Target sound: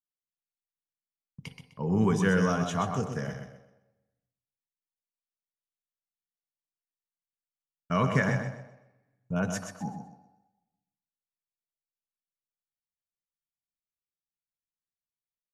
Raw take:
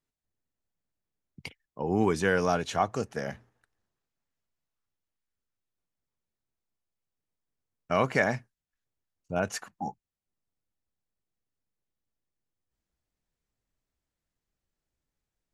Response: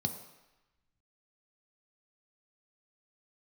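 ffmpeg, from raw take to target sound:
-filter_complex "[0:a]agate=range=-26dB:threshold=-53dB:ratio=16:detection=peak,aecho=1:1:127|254|381|508:0.447|0.13|0.0376|0.0109,asplit=2[link_01][link_02];[1:a]atrim=start_sample=2205,lowshelf=frequency=77:gain=-9.5[link_03];[link_02][link_03]afir=irnorm=-1:irlink=0,volume=-9dB[link_04];[link_01][link_04]amix=inputs=2:normalize=0,volume=-1dB"

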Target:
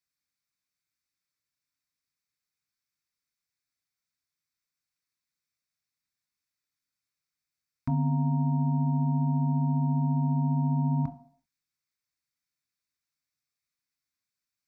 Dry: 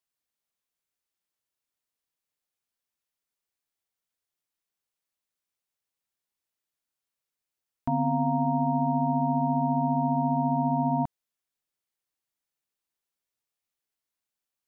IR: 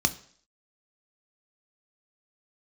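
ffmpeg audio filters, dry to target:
-filter_complex "[0:a]asplit=2[link_01][link_02];[1:a]atrim=start_sample=2205,lowshelf=frequency=350:gain=-4.5[link_03];[link_02][link_03]afir=irnorm=-1:irlink=0,volume=-8.5dB[link_04];[link_01][link_04]amix=inputs=2:normalize=0,volume=-3dB"

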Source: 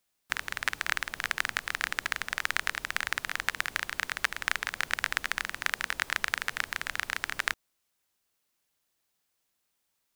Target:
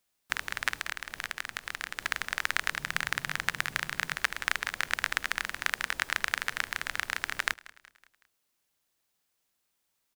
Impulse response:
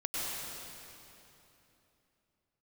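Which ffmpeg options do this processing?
-filter_complex "[0:a]asettb=1/sr,asplit=3[link_01][link_02][link_03];[link_01]atrim=end=0.764[link_04];[link_02]atrim=start=0.76:end=2,asetpts=PTS-STARTPTS,afade=type=in:duration=0.004:curve=qsin,afade=type=out:start_time=1.236:duration=0.004:curve=qsin,acompressor=threshold=-30dB:ratio=6[link_05];[link_03]atrim=start=1.996[link_06];[link_04][link_05]acrossfade=duration=0.004:curve1=hsin:curve2=qsin[link_07];[link_07][link_06]acrossfade=duration=0.004:curve1=qsin:curve2=hsin,asettb=1/sr,asplit=3[link_08][link_09][link_10];[link_08]atrim=end=2.724[link_11];[link_09]atrim=start=2.72:end=4.15,asetpts=PTS-STARTPTS,afade=type=in:duration=0.004:curve=qsin,afade=type=out:start_time=1.426:duration=0.004:curve=qsin,equalizer=frequency=150:width_type=o:width=0.62:gain=13.5[link_12];[link_10]atrim=start=4.146[link_13];[link_11][link_12]acrossfade=duration=0.004:curve1=hsin:curve2=qsin[link_14];[link_14][link_13]acrossfade=duration=0.004:curve1=qsin:curve2=hsin,asplit=2[link_15][link_16];[link_16]aecho=0:1:186|372|558|744:0.0891|0.0446|0.0223|0.0111[link_17];[link_15][link_17]amix=inputs=2:normalize=0"

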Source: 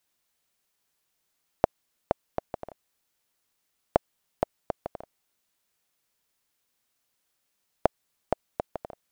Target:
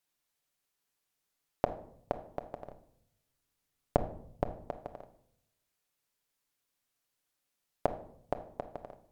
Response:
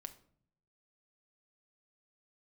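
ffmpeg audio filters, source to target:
-filter_complex "[0:a]asettb=1/sr,asplit=3[link_01][link_02][link_03];[link_01]atrim=end=2.644[link_04];[link_02]atrim=start=2.64:end=4.57,asetpts=PTS-STARTPTS,afade=type=in:duration=0.004:curve=qsin,afade=type=out:start_time=1.926:duration=0.004:curve=qsin,lowshelf=frequency=230:gain=10.5[link_05];[link_03]atrim=start=4.566[link_06];[link_04][link_05]acrossfade=duration=0.004:curve1=hsin:curve2=qsin[link_07];[link_07][link_06]acrossfade=duration=0.004:curve1=qsin:curve2=hsin[link_08];[1:a]atrim=start_sample=2205,asetrate=36162,aresample=44100[link_09];[link_08][link_09]afir=irnorm=-1:irlink=0,volume=-2dB"

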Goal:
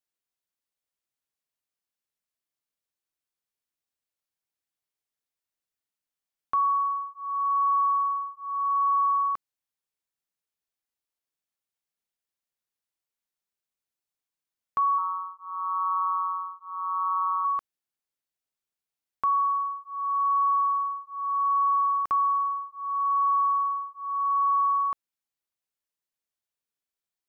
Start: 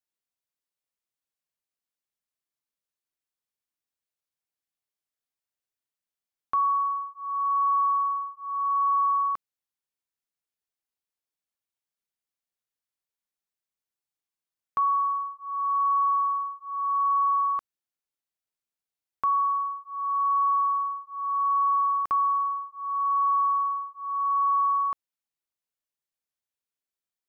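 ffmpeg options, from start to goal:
ffmpeg -i in.wav -filter_complex "[0:a]asettb=1/sr,asplit=3[link_01][link_02][link_03];[link_01]atrim=end=14.984[link_04];[link_02]atrim=start=14.98:end=17.45,asetpts=PTS-STARTPTS,afade=type=in:duration=0.004:curve=qsin,afade=type=out:start_time=2.466:duration=0.004:curve=qsin,tremolo=f=180:d=0.75[link_05];[link_03]atrim=start=17.446[link_06];[link_04][link_05]acrossfade=duration=0.004:curve1=hsin:curve2=qsin[link_07];[link_07][link_06]acrossfade=duration=0.004:curve1=qsin:curve2=hsin" out.wav

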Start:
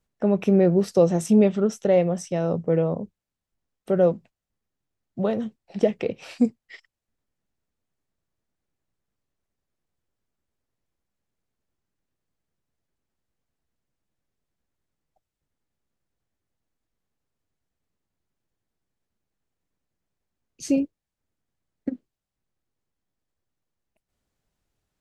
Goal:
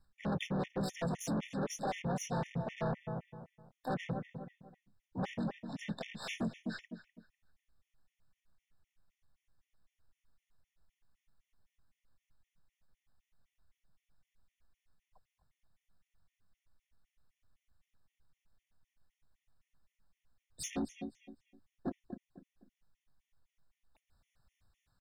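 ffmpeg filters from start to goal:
ffmpeg -i in.wav -filter_complex "[0:a]highshelf=frequency=4900:gain=-9.5,asplit=2[link_01][link_02];[link_02]adelay=249,lowpass=frequency=3900:poles=1,volume=-15.5dB,asplit=2[link_03][link_04];[link_04]adelay=249,lowpass=frequency=3900:poles=1,volume=0.31,asplit=2[link_05][link_06];[link_06]adelay=249,lowpass=frequency=3900:poles=1,volume=0.31[link_07];[link_01][link_03][link_05][link_07]amix=inputs=4:normalize=0,asplit=4[link_08][link_09][link_10][link_11];[link_09]asetrate=29433,aresample=44100,atempo=1.49831,volume=-18dB[link_12];[link_10]asetrate=35002,aresample=44100,atempo=1.25992,volume=-5dB[link_13];[link_11]asetrate=58866,aresample=44100,atempo=0.749154,volume=-3dB[link_14];[link_08][link_12][link_13][link_14]amix=inputs=4:normalize=0,alimiter=limit=-7.5dB:level=0:latency=1:release=376,equalizer=frequency=370:width_type=o:width=1.8:gain=-14,asoftclip=type=tanh:threshold=-33dB,areverse,acompressor=threshold=-39dB:ratio=8,areverse,afftfilt=real='re*gt(sin(2*PI*3.9*pts/sr)*(1-2*mod(floor(b*sr/1024/1800),2)),0)':imag='im*gt(sin(2*PI*3.9*pts/sr)*(1-2*mod(floor(b*sr/1024/1800),2)),0)':win_size=1024:overlap=0.75,volume=6.5dB" out.wav

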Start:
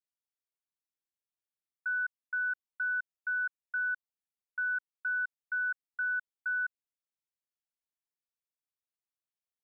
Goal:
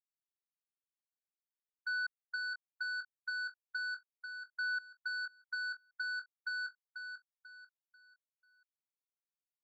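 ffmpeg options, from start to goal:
ffmpeg -i in.wav -af "lowpass=1500,agate=range=-48dB:threshold=-36dB:ratio=16:detection=peak,alimiter=level_in=17.5dB:limit=-24dB:level=0:latency=1:release=238,volume=-17.5dB,aeval=exprs='0.0188*sin(PI/2*2.82*val(0)/0.0188)':channel_layout=same,aecho=1:1:491|982|1473|1964:0.422|0.143|0.0487|0.0166,volume=1dB" out.wav

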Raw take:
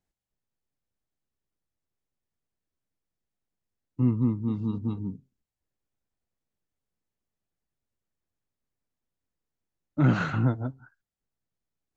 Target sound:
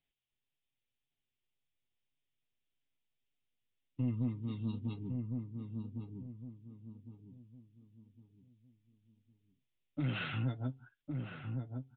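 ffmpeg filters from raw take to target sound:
ffmpeg -i in.wav -filter_complex "[0:a]highshelf=frequency=1900:width_type=q:width=1.5:gain=11.5,alimiter=limit=-20.5dB:level=0:latency=1:release=178,flanger=delay=7:depth=1.4:regen=35:speed=1.8:shape=triangular,asoftclip=type=tanh:threshold=-21.5dB,asplit=2[link_01][link_02];[link_02]adelay=1108,lowpass=frequency=890:poles=1,volume=-4dB,asplit=2[link_03][link_04];[link_04]adelay=1108,lowpass=frequency=890:poles=1,volume=0.35,asplit=2[link_05][link_06];[link_06]adelay=1108,lowpass=frequency=890:poles=1,volume=0.35,asplit=2[link_07][link_08];[link_08]adelay=1108,lowpass=frequency=890:poles=1,volume=0.35[link_09];[link_03][link_05][link_07][link_09]amix=inputs=4:normalize=0[link_10];[link_01][link_10]amix=inputs=2:normalize=0,aresample=8000,aresample=44100,volume=-3dB" out.wav

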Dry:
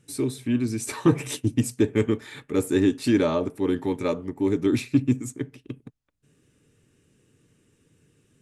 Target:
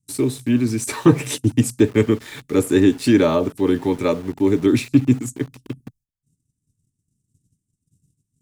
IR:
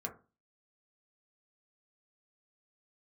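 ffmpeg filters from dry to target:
-filter_complex "[0:a]agate=range=-18dB:threshold=-60dB:ratio=16:detection=peak,acrossover=split=230|5200[link_01][link_02][link_03];[link_02]aeval=exprs='val(0)*gte(abs(val(0)),0.00631)':channel_layout=same[link_04];[link_01][link_04][link_03]amix=inputs=3:normalize=0,volume=6dB"

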